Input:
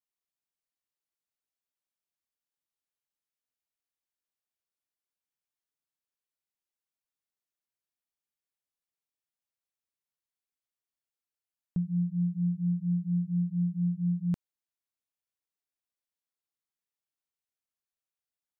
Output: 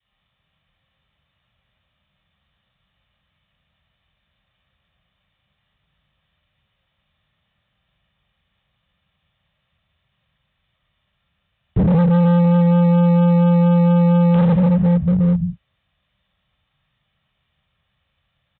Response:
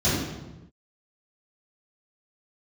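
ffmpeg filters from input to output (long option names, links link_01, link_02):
-filter_complex "[0:a]equalizer=frequency=370:width=2.3:gain=-12.5[link_01];[1:a]atrim=start_sample=2205,asetrate=23814,aresample=44100[link_02];[link_01][link_02]afir=irnorm=-1:irlink=0,acrossover=split=250[link_03][link_04];[link_03]acompressor=threshold=-18dB:ratio=12[link_05];[link_05][link_04]amix=inputs=2:normalize=0,highpass=frequency=44:poles=1,aecho=1:1:1.7:0.34,aresample=8000,asoftclip=type=hard:threshold=-21dB,aresample=44100,volume=8.5dB"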